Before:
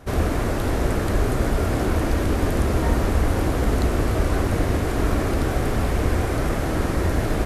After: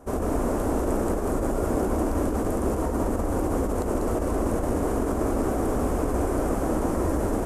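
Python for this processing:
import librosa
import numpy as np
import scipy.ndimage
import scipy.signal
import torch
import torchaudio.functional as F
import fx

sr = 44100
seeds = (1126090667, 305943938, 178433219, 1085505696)

p1 = fx.graphic_eq(x, sr, hz=(125, 250, 500, 1000, 2000, 4000, 8000), db=(-7, 6, 4, 5, -7, -11, 6))
p2 = fx.over_compress(p1, sr, threshold_db=-19.0, ratio=-0.5)
p3 = p2 + fx.echo_single(p2, sr, ms=193, db=-5.0, dry=0)
y = p3 * 10.0 ** (-6.0 / 20.0)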